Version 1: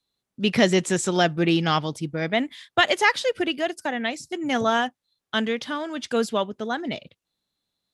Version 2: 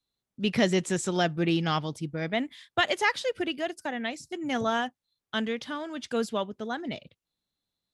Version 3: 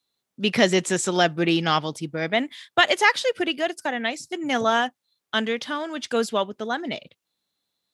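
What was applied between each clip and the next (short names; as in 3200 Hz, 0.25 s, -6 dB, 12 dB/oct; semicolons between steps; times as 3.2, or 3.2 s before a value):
low shelf 130 Hz +6 dB; gain -6 dB
HPF 320 Hz 6 dB/oct; gain +7.5 dB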